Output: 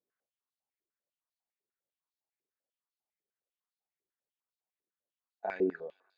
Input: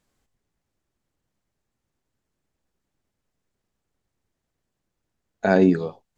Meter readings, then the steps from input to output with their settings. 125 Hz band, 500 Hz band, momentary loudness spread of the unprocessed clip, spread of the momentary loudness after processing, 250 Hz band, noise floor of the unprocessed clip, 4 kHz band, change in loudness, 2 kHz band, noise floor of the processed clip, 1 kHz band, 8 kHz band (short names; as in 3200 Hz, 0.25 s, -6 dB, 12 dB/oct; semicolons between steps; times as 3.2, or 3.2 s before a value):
under -25 dB, -13.0 dB, 9 LU, 11 LU, -17.5 dB, -81 dBFS, under -20 dB, -14.5 dB, -16.0 dB, under -85 dBFS, -13.5 dB, n/a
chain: thinning echo 0.149 s, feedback 81%, high-pass 610 Hz, level -23 dB; stepped band-pass 10 Hz 410–4200 Hz; gain -7 dB